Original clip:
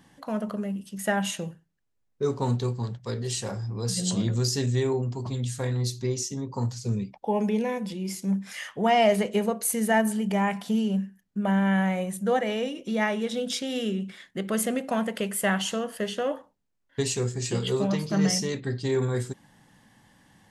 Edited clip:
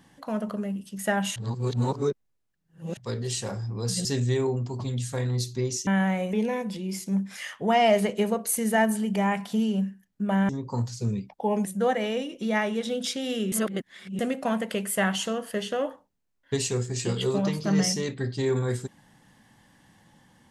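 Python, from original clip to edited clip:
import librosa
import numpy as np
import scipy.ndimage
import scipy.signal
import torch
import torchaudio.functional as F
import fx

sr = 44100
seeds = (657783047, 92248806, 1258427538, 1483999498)

y = fx.edit(x, sr, fx.reverse_span(start_s=1.36, length_s=1.61),
    fx.cut(start_s=4.05, length_s=0.46),
    fx.swap(start_s=6.33, length_s=1.16, other_s=11.65, other_length_s=0.46),
    fx.reverse_span(start_s=13.98, length_s=0.67), tone=tone)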